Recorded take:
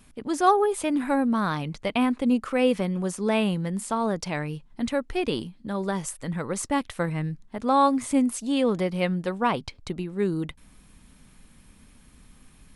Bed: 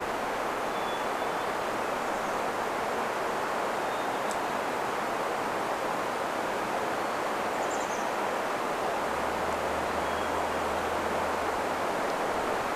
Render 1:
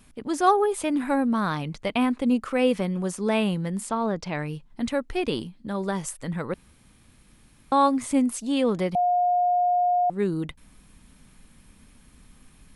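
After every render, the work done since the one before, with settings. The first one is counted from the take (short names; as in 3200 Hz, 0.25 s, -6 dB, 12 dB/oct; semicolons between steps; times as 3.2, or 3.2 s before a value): 3.89–4.39 air absorption 100 m; 6.54–7.72 room tone; 8.95–10.1 bleep 714 Hz -18.5 dBFS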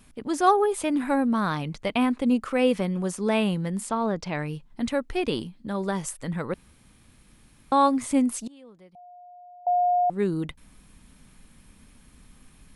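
8.47–9.67 flipped gate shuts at -29 dBFS, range -26 dB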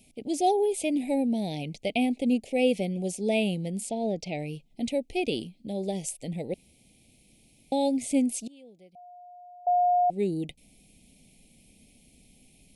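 elliptic band-stop 730–2300 Hz, stop band 50 dB; low shelf 120 Hz -11 dB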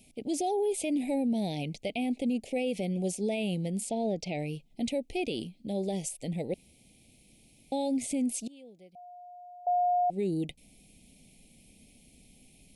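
limiter -23 dBFS, peak gain reduction 10 dB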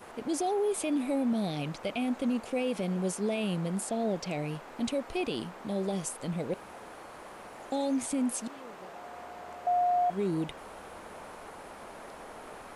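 add bed -16.5 dB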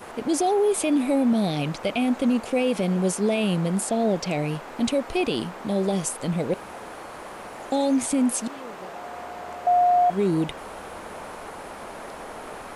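gain +8 dB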